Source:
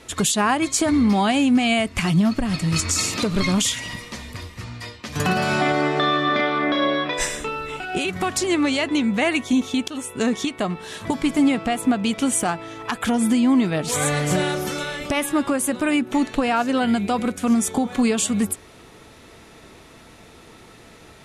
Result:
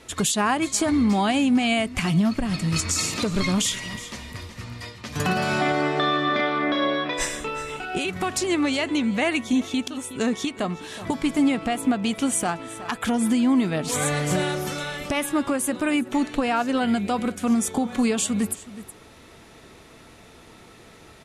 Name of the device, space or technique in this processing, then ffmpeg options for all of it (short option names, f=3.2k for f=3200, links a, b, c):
ducked delay: -filter_complex "[0:a]asplit=3[a][b][c];[b]adelay=369,volume=-9dB[d];[c]apad=whole_len=953314[e];[d][e]sidechaincompress=threshold=-28dB:ratio=8:attack=16:release=826[f];[a][f]amix=inputs=2:normalize=0,volume=-2.5dB"